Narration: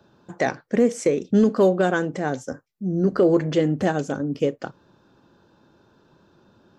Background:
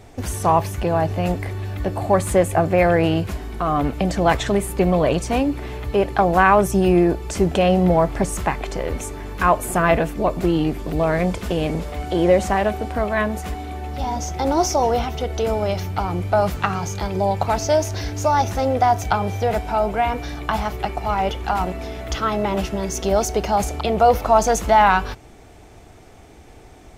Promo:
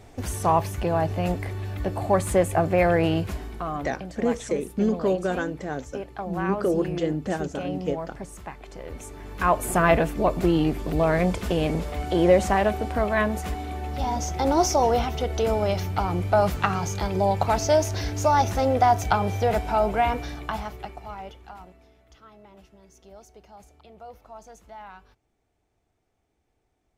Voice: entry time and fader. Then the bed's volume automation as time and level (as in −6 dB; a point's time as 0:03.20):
3.45 s, −6.0 dB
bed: 0:03.42 −4 dB
0:04.03 −16.5 dB
0:08.59 −16.5 dB
0:09.69 −2 dB
0:20.10 −2 dB
0:22.07 −29 dB